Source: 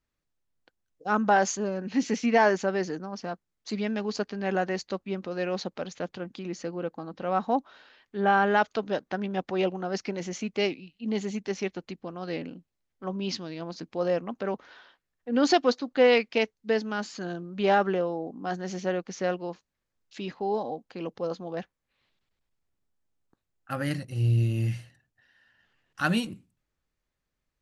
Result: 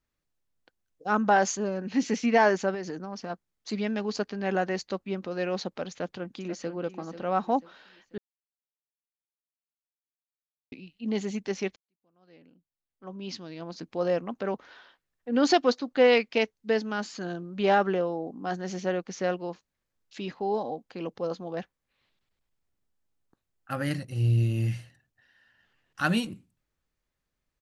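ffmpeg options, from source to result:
-filter_complex "[0:a]asettb=1/sr,asplit=3[s0][s1][s2];[s0]atrim=end=2.744[s3];[s1]atrim=start=2.74:end=3.3,asetpts=PTS-STARTPTS,afade=t=in:d=0.004:c=qsin,afade=t=out:st=0.556:d=0.004:c=qsin,acompressor=threshold=0.0316:ratio=6:attack=3.2:release=140:knee=1:detection=peak[s4];[s2]atrim=start=3.296[s5];[s3][s4]acrossfade=d=0.004:c1=hsin:c2=qsin[s6];[s6][s5]acrossfade=d=0.004:c1=qsin:c2=hsin,asplit=2[s7][s8];[s8]afade=t=in:st=5.91:d=0.01,afade=t=out:st=6.73:d=0.01,aecho=0:1:490|980|1470|1960:0.266073|0.0931254|0.0325939|0.0114079[s9];[s7][s9]amix=inputs=2:normalize=0,asplit=4[s10][s11][s12][s13];[s10]atrim=end=8.18,asetpts=PTS-STARTPTS,afade=t=out:st=8.176:d=0.004:c=hsin[s14];[s11]atrim=start=8.18:end=10.72,asetpts=PTS-STARTPTS,volume=0[s15];[s12]atrim=start=10.72:end=11.76,asetpts=PTS-STARTPTS,afade=t=in:d=0.004:c=hsin,afade=t=out:st=1.036:d=0.004:c=hsin[s16];[s13]atrim=start=11.76,asetpts=PTS-STARTPTS,afade=t=in:d=2.16:c=qua[s17];[s14][s15][s16][s17]concat=n=4:v=0:a=1"

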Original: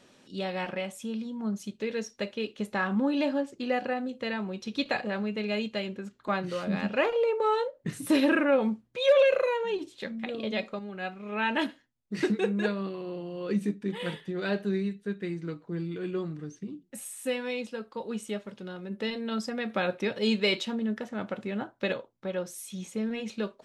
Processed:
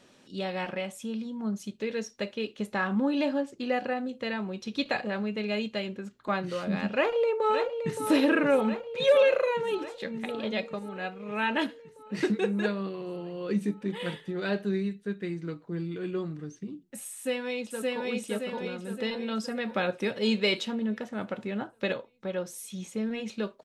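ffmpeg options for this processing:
-filter_complex "[0:a]asplit=2[s0][s1];[s1]afade=t=in:st=6.92:d=0.01,afade=t=out:st=8.03:d=0.01,aecho=0:1:570|1140|1710|2280|2850|3420|3990|4560|5130|5700|6270|6840:0.398107|0.29858|0.223935|0.167951|0.125964|0.0944727|0.0708545|0.0531409|0.0398557|0.0298918|0.0224188|0.0168141[s2];[s0][s2]amix=inputs=2:normalize=0,asplit=2[s3][s4];[s4]afade=t=in:st=17.13:d=0.01,afade=t=out:st=18.1:d=0.01,aecho=0:1:570|1140|1710|2280|2850|3420|3990|4560:0.944061|0.519233|0.285578|0.157068|0.0863875|0.0475131|0.0261322|0.0143727[s5];[s3][s5]amix=inputs=2:normalize=0"

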